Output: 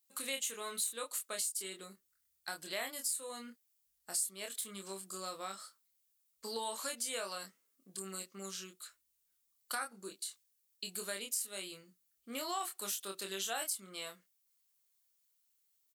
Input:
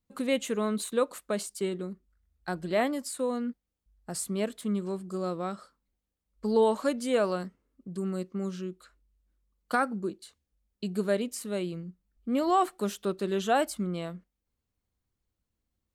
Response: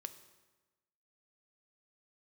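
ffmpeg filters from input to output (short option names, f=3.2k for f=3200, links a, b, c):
-filter_complex "[0:a]aderivative,asplit=2[a][b];[b]adelay=26,volume=-4.5dB[c];[a][c]amix=inputs=2:normalize=0,acompressor=threshold=-49dB:ratio=2.5,volume=10.5dB"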